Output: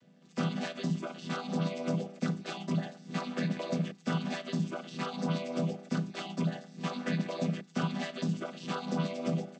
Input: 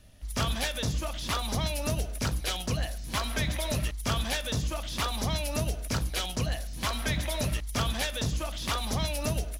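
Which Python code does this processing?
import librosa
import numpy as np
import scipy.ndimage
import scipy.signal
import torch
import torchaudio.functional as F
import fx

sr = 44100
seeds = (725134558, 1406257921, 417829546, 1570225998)

y = fx.chord_vocoder(x, sr, chord='minor triad', root=52)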